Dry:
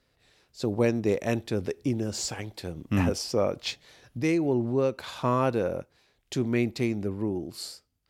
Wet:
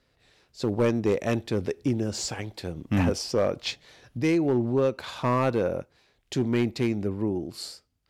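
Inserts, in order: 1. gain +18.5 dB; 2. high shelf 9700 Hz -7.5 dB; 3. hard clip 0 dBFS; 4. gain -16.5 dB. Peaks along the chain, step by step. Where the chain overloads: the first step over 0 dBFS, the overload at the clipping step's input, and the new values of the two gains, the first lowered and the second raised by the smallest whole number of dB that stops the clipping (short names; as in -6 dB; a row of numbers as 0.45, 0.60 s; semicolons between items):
+7.5, +7.5, 0.0, -16.5 dBFS; step 1, 7.5 dB; step 1 +10.5 dB, step 4 -8.5 dB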